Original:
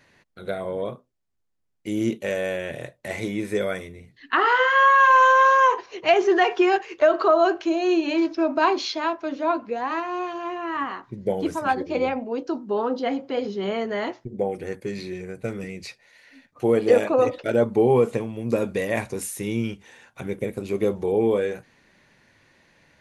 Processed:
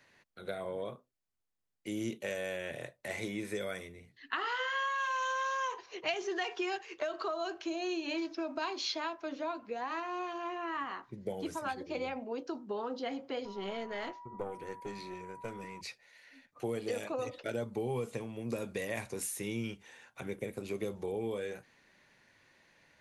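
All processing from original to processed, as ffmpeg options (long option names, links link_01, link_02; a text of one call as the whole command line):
ffmpeg -i in.wav -filter_complex "[0:a]asettb=1/sr,asplit=3[link_01][link_02][link_03];[link_01]atrim=end=13.454[link_04];[link_02]atrim=start=13.45:end=15.81,asetpts=PTS-STARTPTS,afade=type=in:duration=0.004:curve=qsin,afade=type=out:start_time=2.356:duration=0.004:curve=qsin,aeval=exprs='val(0)+0.0141*sin(2*PI*970*n/s)':channel_layout=same,aeval=exprs='(tanh(7.08*val(0)+0.7)-tanh(0.7))/7.08':channel_layout=same[link_05];[link_03]atrim=start=15.806[link_06];[link_04][link_05]acrossfade=duration=0.004:curve1=hsin:curve2=qsin[link_07];[link_07][link_06]acrossfade=duration=0.004:curve1=qsin:curve2=hsin,lowshelf=frequency=390:gain=-6,acrossover=split=170|3000[link_08][link_09][link_10];[link_09]acompressor=threshold=-29dB:ratio=6[link_11];[link_08][link_11][link_10]amix=inputs=3:normalize=0,volume=-5.5dB" out.wav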